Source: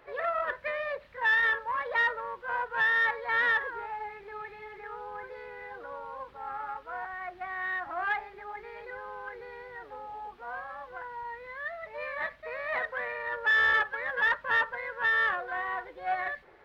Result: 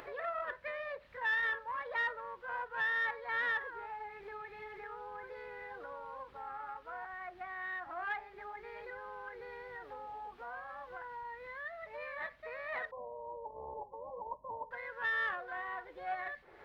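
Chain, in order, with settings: 12.91–14.71 brick-wall FIR low-pass 1100 Hz; upward compressor, threshold -32 dBFS; gain -8 dB

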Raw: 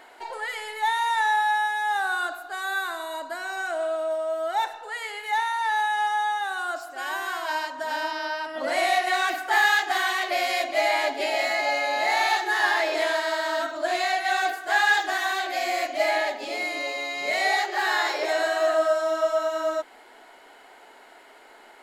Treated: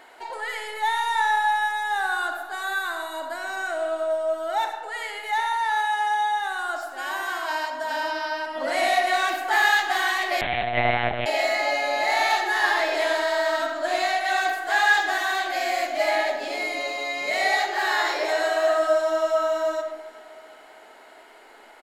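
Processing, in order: feedback echo 0.379 s, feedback 58%, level -21.5 dB; reverb RT60 1.2 s, pre-delay 25 ms, DRR 6.5 dB; 10.41–11.26 monotone LPC vocoder at 8 kHz 120 Hz

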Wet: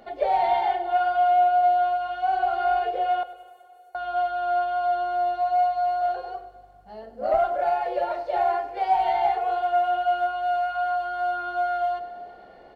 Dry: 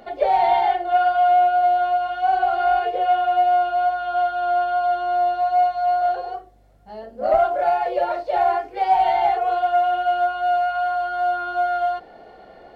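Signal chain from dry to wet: 3.23–3.95 inverse Chebyshev high-pass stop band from 1400 Hz, stop band 80 dB; on a send: feedback echo 99 ms, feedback 55%, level -16.5 dB; on the sum: plate-style reverb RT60 3.1 s, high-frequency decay 0.8×, DRR 17 dB; gain -4.5 dB

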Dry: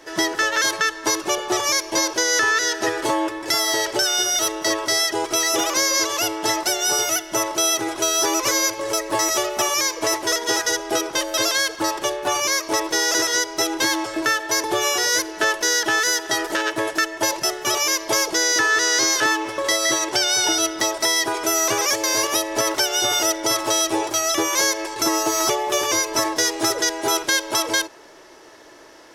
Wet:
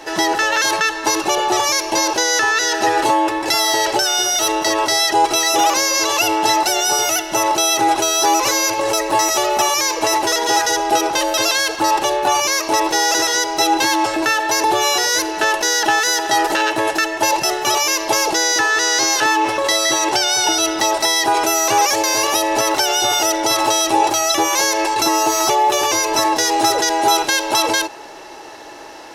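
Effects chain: in parallel at -2 dB: negative-ratio compressor -27 dBFS, ratio -1; on the sum: small resonant body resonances 820/2700/4000 Hz, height 12 dB, ringing for 35 ms

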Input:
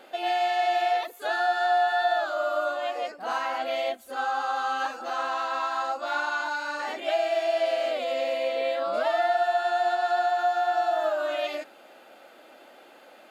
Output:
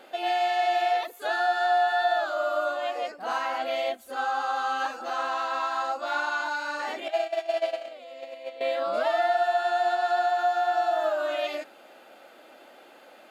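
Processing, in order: 7.08–8.61 gate -24 dBFS, range -15 dB

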